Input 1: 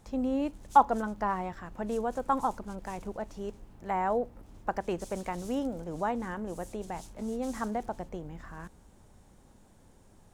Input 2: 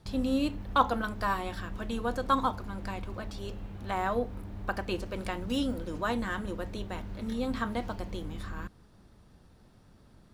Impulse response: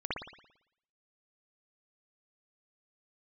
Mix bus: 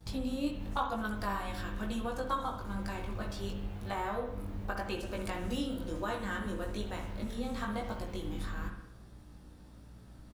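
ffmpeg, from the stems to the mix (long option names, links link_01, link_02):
-filter_complex "[0:a]volume=-13.5dB[link_01];[1:a]acompressor=threshold=-35dB:ratio=3,aeval=exprs='val(0)+0.00251*(sin(2*PI*60*n/s)+sin(2*PI*2*60*n/s)/2+sin(2*PI*3*60*n/s)/3+sin(2*PI*4*60*n/s)/4+sin(2*PI*5*60*n/s)/5)':channel_layout=same,volume=-1,adelay=7.1,volume=1dB,asplit=2[link_02][link_03];[link_03]volume=-8dB[link_04];[2:a]atrim=start_sample=2205[link_05];[link_04][link_05]afir=irnorm=-1:irlink=0[link_06];[link_01][link_02][link_06]amix=inputs=3:normalize=0,highshelf=frequency=6800:gain=6.5,flanger=delay=18.5:depth=2.1:speed=1"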